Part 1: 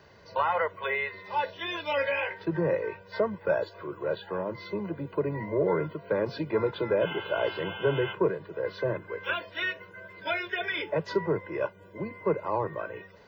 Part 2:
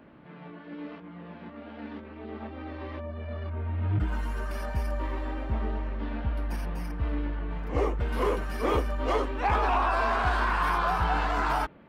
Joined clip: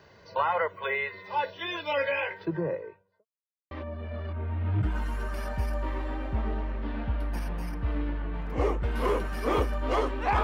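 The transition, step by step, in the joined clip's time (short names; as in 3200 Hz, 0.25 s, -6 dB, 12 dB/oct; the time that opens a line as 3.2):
part 1
2.28–3.26 studio fade out
3.26–3.71 mute
3.71 switch to part 2 from 2.88 s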